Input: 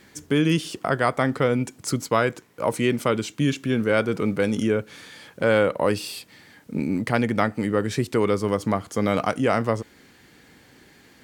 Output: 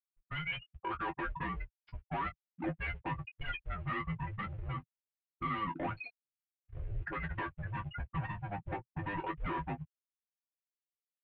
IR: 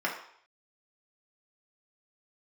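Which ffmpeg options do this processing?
-af "afftfilt=real='re*gte(hypot(re,im),0.1)':imag='im*gte(hypot(re,im),0.1)':win_size=1024:overlap=0.75,aderivative,aecho=1:1:4.7:0.71,dynaudnorm=f=190:g=11:m=5dB,alimiter=limit=-24dB:level=0:latency=1:release=102,acompressor=threshold=-45dB:ratio=1.5,aeval=exprs='0.0596*(cos(1*acos(clip(val(0)/0.0596,-1,1)))-cos(1*PI/2))+0.0106*(cos(5*acos(clip(val(0)/0.0596,-1,1)))-cos(5*PI/2))':c=same,aresample=11025,asoftclip=type=tanh:threshold=-39.5dB,aresample=44100,acrusher=bits=6:mode=log:mix=0:aa=0.000001,aecho=1:1:11|22:0.562|0.316,highpass=f=170:t=q:w=0.5412,highpass=f=170:t=q:w=1.307,lowpass=f=3k:t=q:w=0.5176,lowpass=f=3k:t=q:w=0.7071,lowpass=f=3k:t=q:w=1.932,afreqshift=-300,volume=5dB"

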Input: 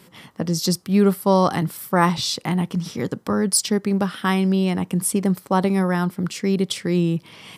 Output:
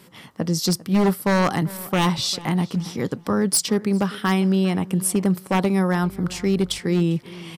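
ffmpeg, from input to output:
-filter_complex "[0:a]asettb=1/sr,asplit=3[a][b][c];[a]atrim=end=6.024[d];[b]atrim=start=6.02:end=6.79,asetpts=PTS-STARTPTS,afade=t=in:d=0.004:c=qsin,afade=t=out:st=0.766:d=0.004:c=qsin,aeval=exprs='val(0)+0.00708*(sin(2*PI*50*n/s)+sin(2*PI*2*50*n/s)/2+sin(2*PI*3*50*n/s)/3+sin(2*PI*4*50*n/s)/4+sin(2*PI*5*50*n/s)/5)':c=same[e];[c]atrim=start=6.786[f];[d][e]acrossfade=d=0.004:c1=hsin:c2=qsin[g];[g][f]acrossfade=d=0.004:c1=qsin:c2=hsin,aeval=exprs='0.251*(abs(mod(val(0)/0.251+3,4)-2)-1)':c=same,asplit=2[h][i];[i]adelay=399,lowpass=f=3.3k:p=1,volume=-19dB,asplit=2[j][k];[k]adelay=399,lowpass=f=3.3k:p=1,volume=0.34,asplit=2[l][m];[m]adelay=399,lowpass=f=3.3k:p=1,volume=0.34[n];[h][j][l][n]amix=inputs=4:normalize=0"

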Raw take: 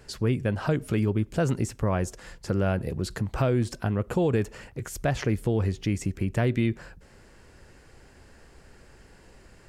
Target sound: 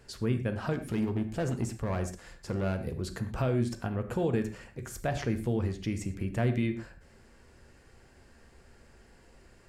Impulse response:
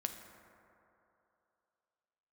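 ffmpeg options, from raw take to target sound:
-filter_complex "[0:a]asettb=1/sr,asplit=3[a][b][c];[a]atrim=end=0.734[d];[b]atrim=start=0.73:end=2.92,asetpts=PTS-STARTPTS,afade=t=in:d=0.004:c=qsin,afade=t=out:st=2.186:d=0.004:c=qsin,asoftclip=type=hard:threshold=-20.5dB[e];[c]atrim=start=2.916[f];[d][e]acrossfade=d=0.004:c1=hsin:c2=qsin[g];[g][f]acrossfade=d=0.004:c1=qsin:c2=hsin[h];[1:a]atrim=start_sample=2205,atrim=end_sample=6174,asetrate=48510,aresample=44100[i];[h][i]afir=irnorm=-1:irlink=0,volume=-3.5dB"

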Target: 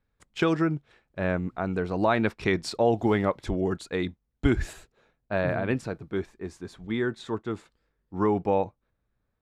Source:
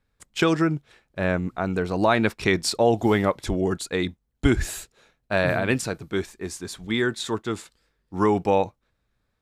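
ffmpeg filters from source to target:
-af "asetnsamples=n=441:p=0,asendcmd='4.73 lowpass f 1300',lowpass=f=2.7k:p=1,volume=-3dB"

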